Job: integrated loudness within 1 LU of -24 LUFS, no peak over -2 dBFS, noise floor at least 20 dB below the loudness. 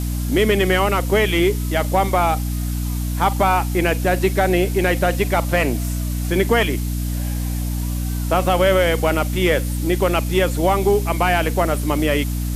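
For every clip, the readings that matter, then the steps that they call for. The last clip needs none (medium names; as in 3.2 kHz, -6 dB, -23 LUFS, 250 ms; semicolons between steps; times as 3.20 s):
hum 60 Hz; highest harmonic 300 Hz; hum level -20 dBFS; noise floor -23 dBFS; noise floor target -39 dBFS; loudness -19.0 LUFS; peak level -4.0 dBFS; loudness target -24.0 LUFS
-> hum notches 60/120/180/240/300 Hz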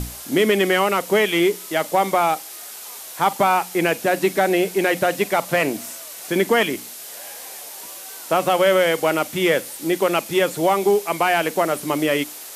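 hum not found; noise floor -37 dBFS; noise floor target -40 dBFS
-> noise reduction 6 dB, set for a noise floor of -37 dBFS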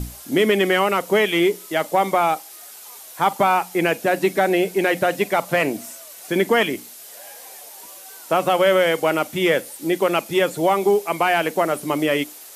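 noise floor -41 dBFS; loudness -20.0 LUFS; peak level -5.5 dBFS; loudness target -24.0 LUFS
-> trim -4 dB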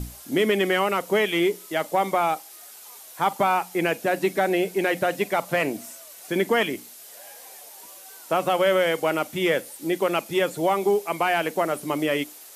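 loudness -24.0 LUFS; peak level -9.5 dBFS; noise floor -45 dBFS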